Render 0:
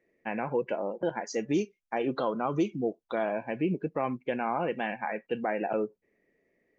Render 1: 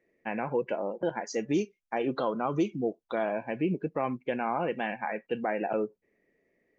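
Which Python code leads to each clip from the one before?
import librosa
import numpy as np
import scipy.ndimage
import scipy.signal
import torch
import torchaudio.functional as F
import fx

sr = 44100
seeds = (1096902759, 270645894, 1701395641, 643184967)

y = x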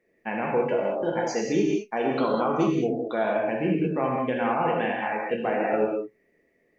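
y = fx.rev_gated(x, sr, seeds[0], gate_ms=230, shape='flat', drr_db=-2.0)
y = F.gain(torch.from_numpy(y), 1.5).numpy()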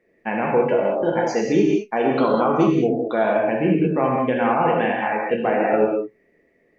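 y = fx.high_shelf(x, sr, hz=5200.0, db=-10.0)
y = F.gain(torch.from_numpy(y), 6.0).numpy()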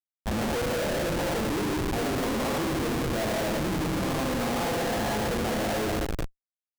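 y = fx.rev_schroeder(x, sr, rt60_s=2.4, comb_ms=33, drr_db=3.0)
y = fx.schmitt(y, sr, flips_db=-21.0)
y = F.gain(torch.from_numpy(y), -9.0).numpy()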